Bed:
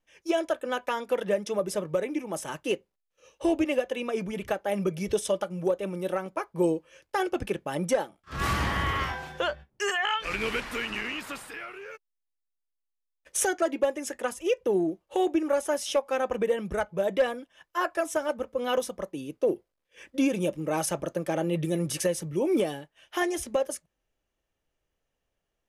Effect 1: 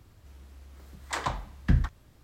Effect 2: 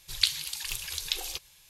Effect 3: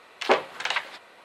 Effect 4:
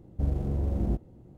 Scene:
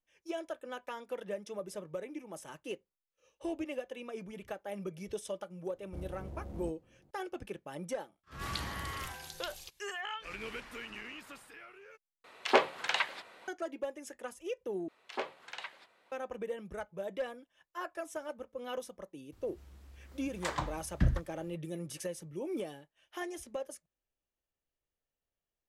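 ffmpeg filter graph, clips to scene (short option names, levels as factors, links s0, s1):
-filter_complex "[3:a]asplit=2[s0][s1];[0:a]volume=0.237[s2];[4:a]lowshelf=f=480:g=-9.5[s3];[2:a]alimiter=limit=0.316:level=0:latency=1:release=419[s4];[s2]asplit=3[s5][s6][s7];[s5]atrim=end=12.244[s8];[s0]atrim=end=1.24,asetpts=PTS-STARTPTS,volume=0.631[s9];[s6]atrim=start=13.476:end=14.884[s10];[s1]atrim=end=1.24,asetpts=PTS-STARTPTS,volume=0.15[s11];[s7]atrim=start=16.116[s12];[s3]atrim=end=1.37,asetpts=PTS-STARTPTS,volume=0.422,afade=t=in:d=0.004:c=hsin,afade=t=out:st=1.366:d=0.004:c=hsin,adelay=5740[s13];[s4]atrim=end=1.69,asetpts=PTS-STARTPTS,volume=0.211,afade=t=in:d=0.004:c=hsin,afade=t=out:st=1.686:d=0.004:c=hsin,adelay=8320[s14];[1:a]atrim=end=2.23,asetpts=PTS-STARTPTS,volume=0.562,afade=t=in:d=0.004:c=hsin,afade=t=out:st=2.226:d=0.004:c=hsin,adelay=19320[s15];[s8][s9]acrossfade=d=0.004:c1=hsin:c2=hsin[s16];[s16][s10]acrossfade=d=0.004:c1=hsin:c2=hsin[s17];[s17][s11]acrossfade=d=0.004:c1=hsin:c2=hsin[s18];[s18][s12]acrossfade=d=0.004:c1=hsin:c2=hsin[s19];[s19][s13][s14][s15]amix=inputs=4:normalize=0"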